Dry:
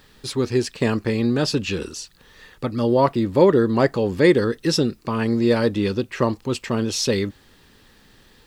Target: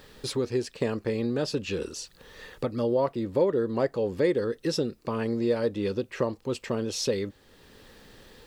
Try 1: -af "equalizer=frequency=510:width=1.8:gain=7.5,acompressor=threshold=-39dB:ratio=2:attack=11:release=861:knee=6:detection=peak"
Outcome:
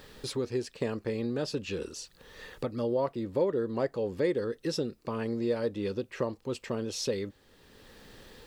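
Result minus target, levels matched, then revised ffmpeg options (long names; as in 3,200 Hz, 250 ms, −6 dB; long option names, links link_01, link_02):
downward compressor: peak gain reduction +4 dB
-af "equalizer=frequency=510:width=1.8:gain=7.5,acompressor=threshold=-31dB:ratio=2:attack=11:release=861:knee=6:detection=peak"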